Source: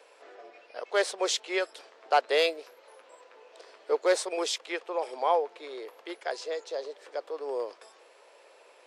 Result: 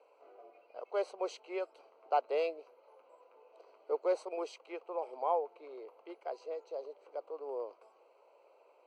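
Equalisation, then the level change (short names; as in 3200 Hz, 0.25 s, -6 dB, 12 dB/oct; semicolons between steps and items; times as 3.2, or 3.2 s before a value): running mean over 25 samples; low shelf 480 Hz -11.5 dB; 0.0 dB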